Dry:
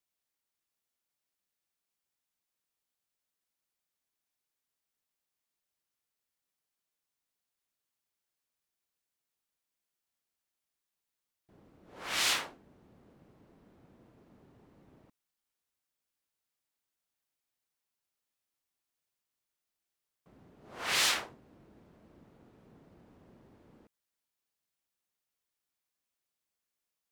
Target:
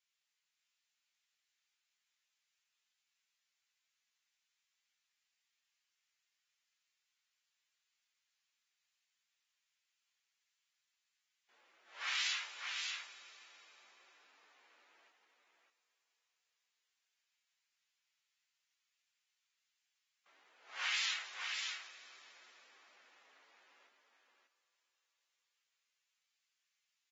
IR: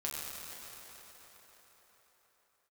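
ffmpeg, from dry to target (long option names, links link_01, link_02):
-filter_complex "[0:a]highpass=1500,equalizer=frequency=2400:width_type=o:width=1.2:gain=4,acompressor=threshold=-41dB:ratio=4,afreqshift=43,flanger=delay=15.5:depth=3.5:speed=0.54,aecho=1:1:587:0.562,asplit=2[link_01][link_02];[1:a]atrim=start_sample=2205,highshelf=frequency=5400:gain=5.5[link_03];[link_02][link_03]afir=irnorm=-1:irlink=0,volume=-14dB[link_04];[link_01][link_04]amix=inputs=2:normalize=0,volume=4.5dB" -ar 48000 -c:a aac -b:a 24k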